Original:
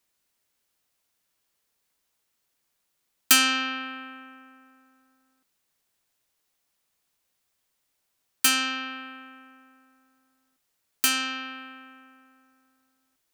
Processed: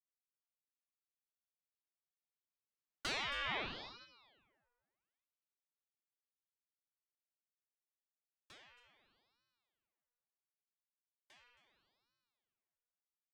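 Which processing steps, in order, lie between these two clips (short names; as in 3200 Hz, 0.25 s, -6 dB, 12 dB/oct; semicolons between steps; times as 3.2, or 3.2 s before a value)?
Doppler pass-by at 3.57, 27 m/s, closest 2.6 m; bell 390 Hz -13 dB 2.6 oct; tube stage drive 28 dB, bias 0.3; tape spacing loss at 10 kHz 26 dB; echo 0.271 s -13 dB; ring modulator with a swept carrier 1500 Hz, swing 85%, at 0.74 Hz; gain +9 dB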